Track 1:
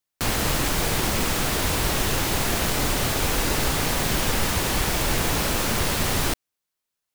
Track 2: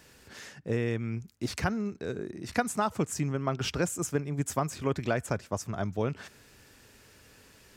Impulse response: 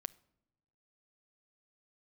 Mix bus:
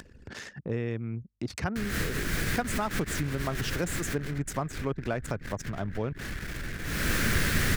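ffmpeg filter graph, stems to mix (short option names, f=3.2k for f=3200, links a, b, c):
-filter_complex "[0:a]firequalizer=gain_entry='entry(170,0);entry(860,-17);entry(1600,3);entry(2800,-6)':delay=0.05:min_phase=1,equalizer=f=1.2k:w=0.42:g=2,adelay=1550,volume=9dB,afade=t=out:st=3.84:d=0.72:silence=0.334965,afade=t=in:st=6.83:d=0.28:silence=0.237137[a];[1:a]lowshelf=f=200:g=2.5,volume=-3dB,asplit=2[b][c];[c]apad=whole_len=387721[d];[a][d]sidechaincompress=threshold=-37dB:ratio=16:attack=16:release=121[e];[e][b]amix=inputs=2:normalize=0,acompressor=mode=upward:threshold=-29dB:ratio=2.5,anlmdn=1"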